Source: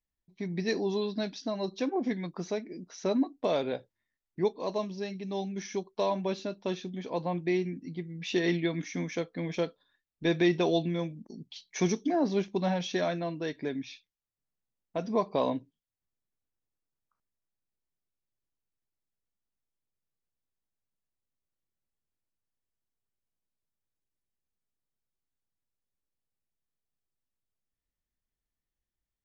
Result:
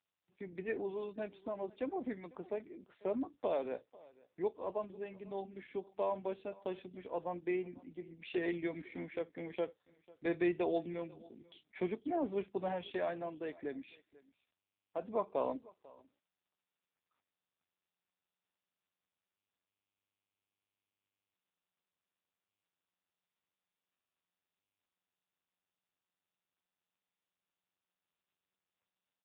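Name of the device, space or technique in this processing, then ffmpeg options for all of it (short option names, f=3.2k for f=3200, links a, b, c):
satellite phone: -filter_complex "[0:a]asplit=3[a][b][c];[a]afade=t=out:st=12.1:d=0.02[d];[b]highshelf=f=6.1k:g=-2,afade=t=in:st=12.1:d=0.02,afade=t=out:st=12.76:d=0.02[e];[c]afade=t=in:st=12.76:d=0.02[f];[d][e][f]amix=inputs=3:normalize=0,highpass=300,lowpass=3.3k,aecho=1:1:495:0.075,volume=-5dB" -ar 8000 -c:a libopencore_amrnb -b:a 5900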